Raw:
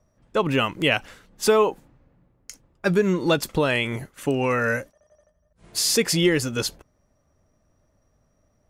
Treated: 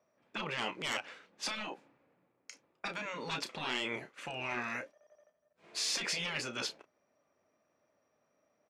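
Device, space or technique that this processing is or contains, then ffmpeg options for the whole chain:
intercom: -filter_complex "[0:a]highpass=350,lowpass=4600,equalizer=f=2400:t=o:w=0.23:g=6.5,asoftclip=type=tanh:threshold=0.299,asplit=2[s0][s1];[s1]adelay=32,volume=0.282[s2];[s0][s2]amix=inputs=2:normalize=0,afftfilt=real='re*lt(hypot(re,im),0.158)':imag='im*lt(hypot(re,im),0.158)':win_size=1024:overlap=0.75,volume=0.596"

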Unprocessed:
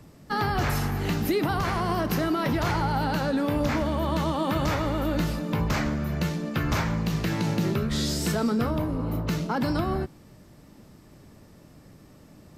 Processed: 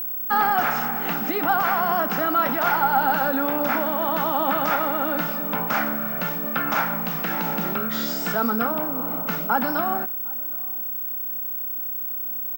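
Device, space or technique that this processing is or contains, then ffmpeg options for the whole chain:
old television with a line whistle: -filter_complex "[0:a]asettb=1/sr,asplit=3[s0][s1][s2];[s0]atrim=end=6.084[s3];[s1]atrim=start=6.08:end=7.25,asetpts=PTS-STARTPTS,afade=t=in:d=0.004:c=qsin,afade=t=out:st=1.166:d=0.004:c=qsin,lowpass=f=11000:w=0.5412,lowpass=f=11000:w=1.3066[s4];[s2]atrim=start=7.246[s5];[s3][s4]acrossfade=d=0.004:c1=hsin:c2=qsin[s6];[s6][s5]acrossfade=d=0.004:c1=qsin:c2=hsin,highpass=f=210:w=0.5412,highpass=f=210:w=1.3066,equalizer=f=360:t=q:w=4:g=-10,equalizer=f=780:t=q:w=4:g=8,equalizer=f=1400:t=q:w=4:g=10,equalizer=f=4200:t=q:w=4:g=-8,equalizer=f=6300:t=q:w=4:g=-4,lowpass=f=6900:w=0.5412,lowpass=f=6900:w=1.3066,aeval=exprs='val(0)+0.0398*sin(2*PI*15734*n/s)':c=same,asplit=2[s7][s8];[s8]adelay=758,volume=0.0631,highshelf=f=4000:g=-17.1[s9];[s7][s9]amix=inputs=2:normalize=0,volume=1.26"

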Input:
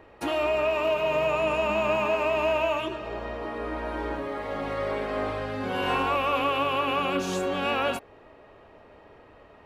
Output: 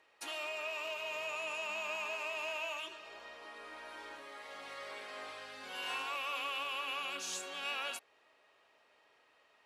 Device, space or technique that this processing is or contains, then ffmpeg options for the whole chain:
piezo pickup straight into a mixer: -af "lowpass=8600,aderivative,volume=1.19"

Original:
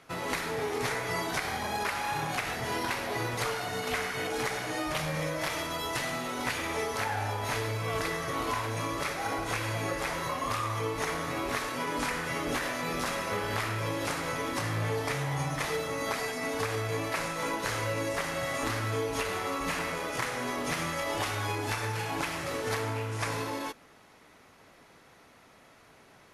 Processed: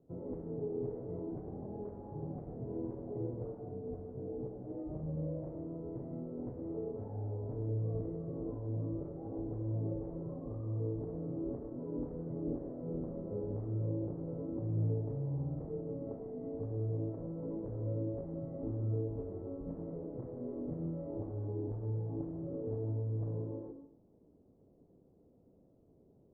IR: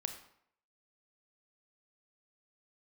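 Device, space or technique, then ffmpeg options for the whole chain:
next room: -filter_complex "[0:a]asettb=1/sr,asplit=3[s0][s1][s2];[s0]atrim=end=3.744[s3];[s1]atrim=start=3.74:end=4.65,asetpts=PTS-STARTPTS,afade=t=in:d=0.004:c=qsin,afade=t=out:st=0.906:d=0.004:c=qsin,lowpass=f=1000:p=1[s4];[s2]atrim=start=4.646[s5];[s3][s4]acrossfade=d=0.004:c1=hsin:c2=qsin[s6];[s6][s5]acrossfade=d=0.004:c1=qsin:c2=hsin,lowpass=f=460:w=0.5412,lowpass=f=460:w=1.3066[s7];[1:a]atrim=start_sample=2205[s8];[s7][s8]afir=irnorm=-1:irlink=0,volume=0.794"

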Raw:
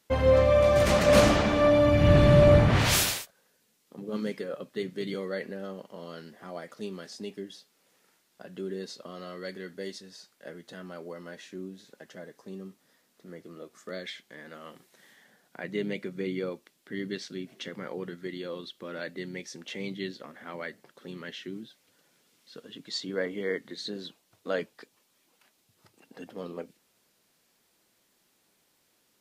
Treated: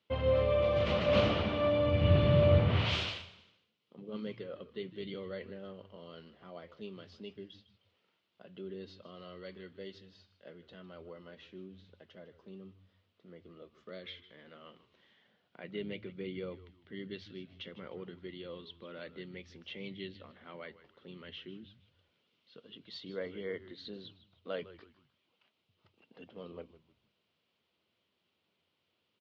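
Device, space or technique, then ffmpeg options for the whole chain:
frequency-shifting delay pedal into a guitar cabinet: -filter_complex "[0:a]asplit=4[s0][s1][s2][s3];[s1]adelay=154,afreqshift=-96,volume=0.158[s4];[s2]adelay=308,afreqshift=-192,volume=0.0569[s5];[s3]adelay=462,afreqshift=-288,volume=0.0207[s6];[s0][s4][s5][s6]amix=inputs=4:normalize=0,highpass=82,equalizer=f=87:t=q:w=4:g=10,equalizer=f=280:t=q:w=4:g=-4,equalizer=f=810:t=q:w=4:g=-4,equalizer=f=1700:t=q:w=4:g=-7,equalizer=f=3000:t=q:w=4:g=6,lowpass=f=3900:w=0.5412,lowpass=f=3900:w=1.3066,volume=0.422"

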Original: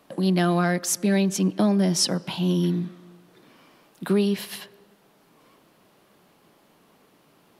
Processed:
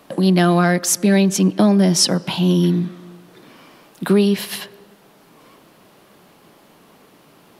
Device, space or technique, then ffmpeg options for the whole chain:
parallel compression: -filter_complex "[0:a]asplit=2[s0][s1];[s1]acompressor=threshold=0.0251:ratio=6,volume=0.398[s2];[s0][s2]amix=inputs=2:normalize=0,volume=2"

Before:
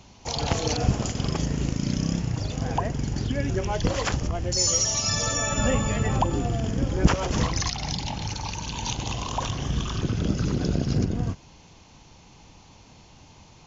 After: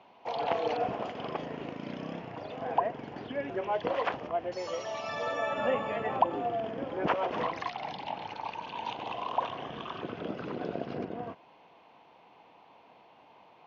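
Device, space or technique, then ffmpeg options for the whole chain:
phone earpiece: -af "highpass=340,equalizer=f=480:t=q:w=4:g=4,equalizer=f=690:t=q:w=4:g=8,equalizer=f=1000:t=q:w=4:g=5,lowpass=f=3000:w=0.5412,lowpass=f=3000:w=1.3066,volume=0.562"

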